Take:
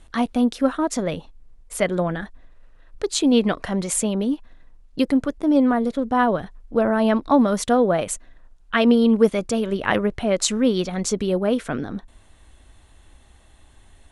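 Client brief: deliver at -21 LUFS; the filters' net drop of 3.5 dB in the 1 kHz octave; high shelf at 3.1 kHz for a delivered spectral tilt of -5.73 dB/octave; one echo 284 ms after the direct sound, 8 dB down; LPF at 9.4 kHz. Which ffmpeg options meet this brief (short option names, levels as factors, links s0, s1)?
-af "lowpass=9400,equalizer=f=1000:t=o:g=-4,highshelf=f=3100:g=-8.5,aecho=1:1:284:0.398,volume=1.06"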